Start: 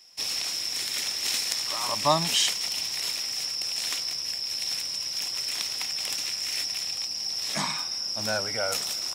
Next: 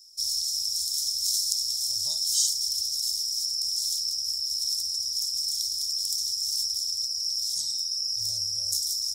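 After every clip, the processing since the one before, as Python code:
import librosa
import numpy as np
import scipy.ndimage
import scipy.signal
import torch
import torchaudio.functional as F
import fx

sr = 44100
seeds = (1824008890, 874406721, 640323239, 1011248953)

y = scipy.signal.sosfilt(scipy.signal.cheby2(4, 40, [160.0, 2700.0], 'bandstop', fs=sr, output='sos'), x)
y = fx.peak_eq(y, sr, hz=360.0, db=15.0, octaves=1.1)
y = F.gain(torch.from_numpy(y), 4.0).numpy()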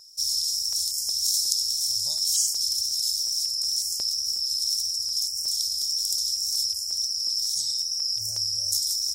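y = fx.wow_flutter(x, sr, seeds[0], rate_hz=2.1, depth_cents=21.0)
y = fx.filter_held_notch(y, sr, hz=5.5, low_hz=290.0, high_hz=3700.0)
y = F.gain(torch.from_numpy(y), 2.5).numpy()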